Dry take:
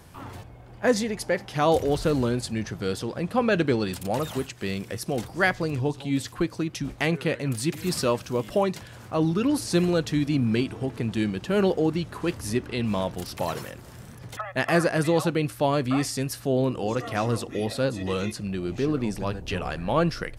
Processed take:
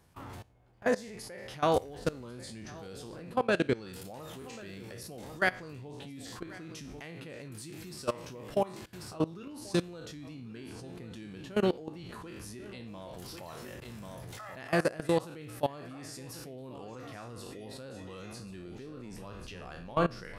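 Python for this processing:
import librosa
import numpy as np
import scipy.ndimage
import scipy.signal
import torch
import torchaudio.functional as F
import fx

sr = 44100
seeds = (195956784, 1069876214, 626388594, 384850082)

y = fx.spec_trails(x, sr, decay_s=0.44)
y = y + 10.0 ** (-13.5 / 20.0) * np.pad(y, (int(1090 * sr / 1000.0), 0))[:len(y)]
y = fx.level_steps(y, sr, step_db=20)
y = y * librosa.db_to_amplitude(-4.5)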